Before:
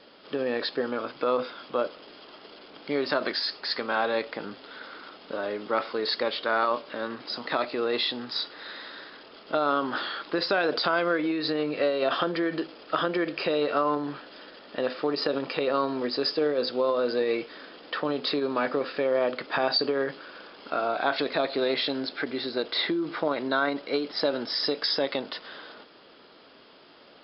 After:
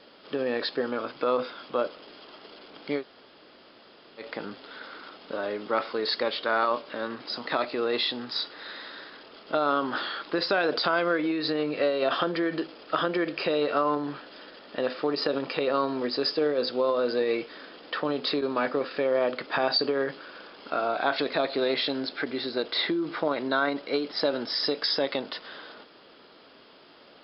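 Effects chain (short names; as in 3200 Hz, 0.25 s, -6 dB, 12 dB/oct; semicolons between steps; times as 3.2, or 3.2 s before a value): 2.99–4.22 room tone, crossfade 0.10 s; 18.41–18.91 expander -28 dBFS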